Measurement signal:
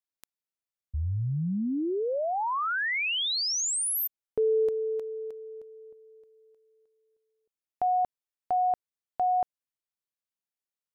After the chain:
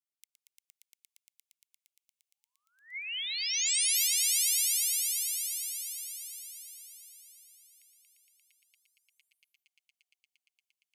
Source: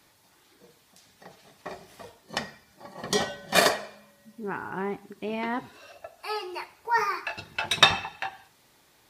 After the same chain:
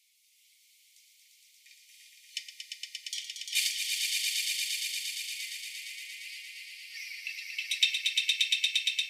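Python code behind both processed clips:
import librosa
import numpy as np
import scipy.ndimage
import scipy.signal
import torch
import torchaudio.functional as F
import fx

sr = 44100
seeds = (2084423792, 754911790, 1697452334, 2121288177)

y = fx.tremolo_shape(x, sr, shape='triangle', hz=0.58, depth_pct=65)
y = scipy.signal.sosfilt(scipy.signal.cheby1(6, 3, 2100.0, 'highpass', fs=sr, output='sos'), y)
y = fx.echo_swell(y, sr, ms=116, loudest=5, wet_db=-4)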